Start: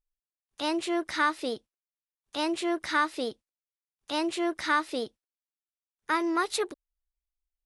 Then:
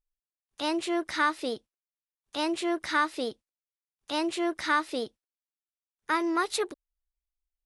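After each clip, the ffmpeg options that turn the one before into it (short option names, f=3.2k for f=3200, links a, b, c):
-af anull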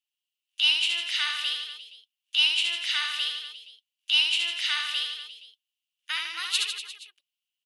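-filter_complex "[0:a]highpass=f=2.9k:t=q:w=9.4,asplit=2[a][b];[b]aecho=0:1:70|150.5|243.1|349.5|472:0.631|0.398|0.251|0.158|0.1[c];[a][c]amix=inputs=2:normalize=0,volume=1dB"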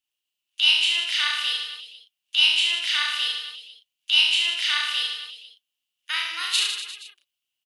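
-filter_complex "[0:a]asplit=2[a][b];[b]adelay=34,volume=-2dB[c];[a][c]amix=inputs=2:normalize=0,volume=2dB"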